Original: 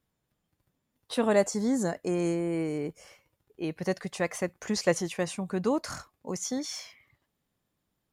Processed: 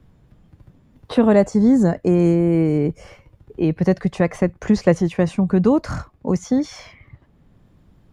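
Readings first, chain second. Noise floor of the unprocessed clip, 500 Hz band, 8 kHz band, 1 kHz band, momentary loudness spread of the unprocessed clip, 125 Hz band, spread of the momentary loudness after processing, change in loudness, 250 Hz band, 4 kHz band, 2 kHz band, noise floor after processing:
-81 dBFS, +9.5 dB, n/a, +7.5 dB, 12 LU, +16.5 dB, 9 LU, +12.0 dB, +14.0 dB, 0.0 dB, +4.5 dB, -56 dBFS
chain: RIAA curve playback; three-band squash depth 40%; gain +7 dB

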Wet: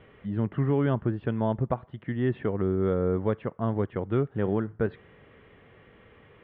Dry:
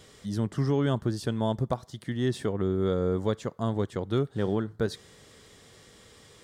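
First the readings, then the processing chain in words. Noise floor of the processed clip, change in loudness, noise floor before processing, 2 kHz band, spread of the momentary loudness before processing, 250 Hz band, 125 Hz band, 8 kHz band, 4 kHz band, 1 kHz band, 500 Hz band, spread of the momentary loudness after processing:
-56 dBFS, +1.0 dB, -55 dBFS, +1.0 dB, 6 LU, +1.0 dB, +1.0 dB, under -30 dB, under -10 dB, +1.0 dB, +1.0 dB, 6 LU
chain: steep low-pass 2800 Hz 48 dB/oct; gain +1 dB

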